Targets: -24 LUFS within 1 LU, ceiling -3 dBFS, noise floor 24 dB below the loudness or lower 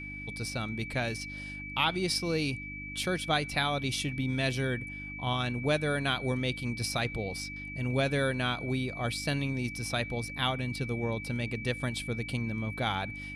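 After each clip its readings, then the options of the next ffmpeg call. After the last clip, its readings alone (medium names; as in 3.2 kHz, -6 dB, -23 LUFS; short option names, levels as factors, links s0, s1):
hum 50 Hz; highest harmonic 300 Hz; hum level -42 dBFS; steady tone 2.3 kHz; tone level -40 dBFS; loudness -31.5 LUFS; peak level -13.5 dBFS; loudness target -24.0 LUFS
-> -af "bandreject=f=50:t=h:w=4,bandreject=f=100:t=h:w=4,bandreject=f=150:t=h:w=4,bandreject=f=200:t=h:w=4,bandreject=f=250:t=h:w=4,bandreject=f=300:t=h:w=4"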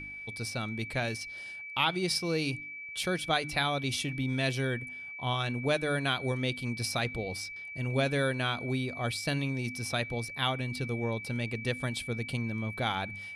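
hum not found; steady tone 2.3 kHz; tone level -40 dBFS
-> -af "bandreject=f=2300:w=30"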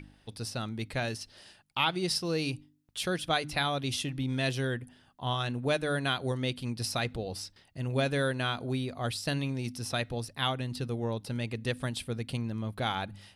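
steady tone not found; loudness -32.5 LUFS; peak level -13.5 dBFS; loudness target -24.0 LUFS
-> -af "volume=2.66"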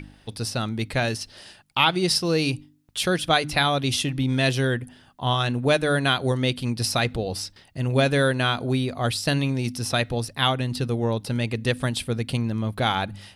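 loudness -24.0 LUFS; peak level -5.0 dBFS; noise floor -55 dBFS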